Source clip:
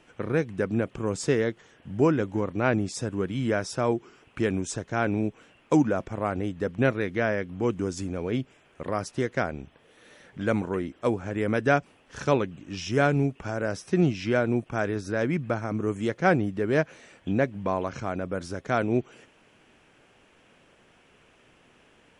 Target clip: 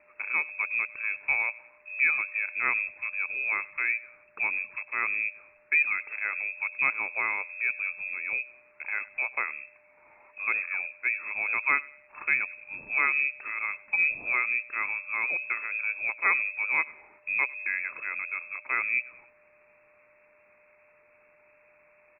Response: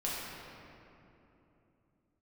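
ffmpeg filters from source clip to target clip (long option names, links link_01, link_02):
-filter_complex "[0:a]asplit=2[link_01][link_02];[link_02]adelay=98,lowpass=frequency=1100:poles=1,volume=-19.5dB,asplit=2[link_03][link_04];[link_04]adelay=98,lowpass=frequency=1100:poles=1,volume=0.44,asplit=2[link_05][link_06];[link_06]adelay=98,lowpass=frequency=1100:poles=1,volume=0.44[link_07];[link_01][link_03][link_05][link_07]amix=inputs=4:normalize=0,aeval=exprs='val(0)+0.00141*sin(2*PI*2100*n/s)':channel_layout=same,lowpass=frequency=2300:width_type=q:width=0.5098,lowpass=frequency=2300:width_type=q:width=0.6013,lowpass=frequency=2300:width_type=q:width=0.9,lowpass=frequency=2300:width_type=q:width=2.563,afreqshift=-2700,volume=-3.5dB"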